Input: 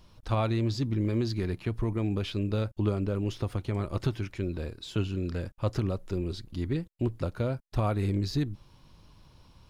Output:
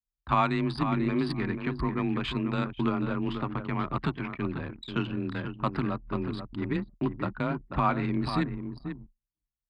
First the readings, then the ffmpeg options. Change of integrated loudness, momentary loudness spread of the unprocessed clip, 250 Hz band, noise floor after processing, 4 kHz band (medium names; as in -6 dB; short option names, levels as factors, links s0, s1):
+0.5 dB, 6 LU, +2.5 dB, under -85 dBFS, +0.5 dB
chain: -filter_complex "[0:a]aecho=1:1:489|978|1467:0.398|0.0637|0.0102,agate=range=0.0316:threshold=0.00631:ratio=16:detection=peak,aresample=11025,aresample=44100,acrossover=split=3700[s0][s1];[s1]aeval=exprs='max(val(0),0)':c=same[s2];[s0][s2]amix=inputs=2:normalize=0,afreqshift=23,anlmdn=0.398,equalizer=f=125:t=o:w=1:g=-6,equalizer=f=250:t=o:w=1:g=6,equalizer=f=500:t=o:w=1:g=-9,equalizer=f=1000:t=o:w=1:g=11,equalizer=f=2000:t=o:w=1:g=7,equalizer=f=4000:t=o:w=1:g=3"